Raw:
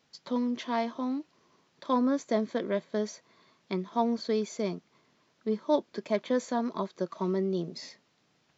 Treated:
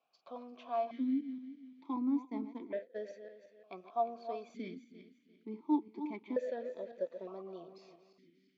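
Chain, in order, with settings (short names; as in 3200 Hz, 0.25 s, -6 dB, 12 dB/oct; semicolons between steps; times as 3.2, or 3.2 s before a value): regenerating reverse delay 0.173 s, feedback 53%, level -10 dB; 1.96–2.96 expander -26 dBFS; vowel sequencer 1.1 Hz; gain +1 dB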